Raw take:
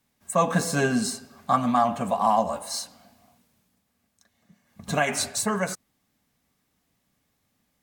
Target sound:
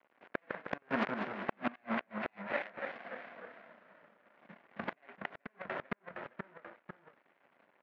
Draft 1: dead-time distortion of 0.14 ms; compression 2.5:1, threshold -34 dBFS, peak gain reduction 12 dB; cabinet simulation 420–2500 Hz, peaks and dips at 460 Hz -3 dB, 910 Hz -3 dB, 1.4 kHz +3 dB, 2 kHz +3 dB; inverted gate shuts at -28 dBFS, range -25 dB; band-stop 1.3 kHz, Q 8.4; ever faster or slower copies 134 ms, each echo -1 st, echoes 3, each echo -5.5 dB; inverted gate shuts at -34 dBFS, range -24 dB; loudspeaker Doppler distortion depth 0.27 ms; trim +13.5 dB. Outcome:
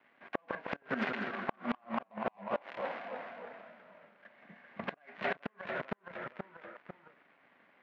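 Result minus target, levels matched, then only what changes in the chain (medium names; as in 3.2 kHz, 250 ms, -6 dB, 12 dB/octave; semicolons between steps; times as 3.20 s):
dead-time distortion: distortion -11 dB
change: dead-time distortion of 0.42 ms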